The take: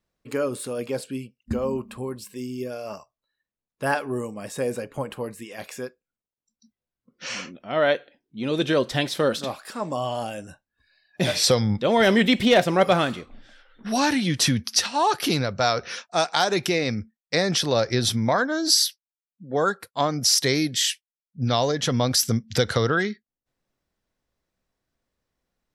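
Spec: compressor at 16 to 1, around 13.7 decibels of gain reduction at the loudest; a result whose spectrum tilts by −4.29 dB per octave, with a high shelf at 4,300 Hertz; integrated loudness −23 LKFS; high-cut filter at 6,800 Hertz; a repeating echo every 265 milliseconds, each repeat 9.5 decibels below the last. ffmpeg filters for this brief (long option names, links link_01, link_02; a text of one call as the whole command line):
ffmpeg -i in.wav -af "lowpass=6800,highshelf=frequency=4300:gain=-3.5,acompressor=threshold=-27dB:ratio=16,aecho=1:1:265|530|795|1060:0.335|0.111|0.0365|0.012,volume=9.5dB" out.wav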